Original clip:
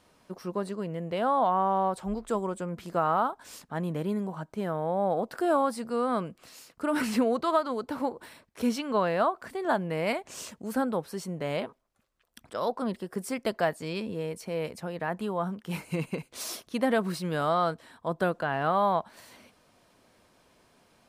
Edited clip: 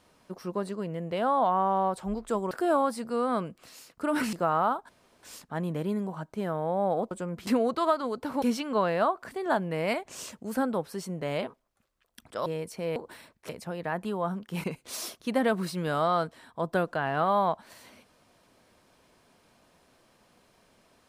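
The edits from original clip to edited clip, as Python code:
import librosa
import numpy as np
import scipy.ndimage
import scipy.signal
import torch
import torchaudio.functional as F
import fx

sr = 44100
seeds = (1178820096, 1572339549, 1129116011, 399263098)

y = fx.edit(x, sr, fx.swap(start_s=2.51, length_s=0.36, other_s=5.31, other_length_s=1.82),
    fx.insert_room_tone(at_s=3.43, length_s=0.34),
    fx.move(start_s=8.08, length_s=0.53, to_s=14.65),
    fx.cut(start_s=12.65, length_s=1.5),
    fx.cut(start_s=15.8, length_s=0.31), tone=tone)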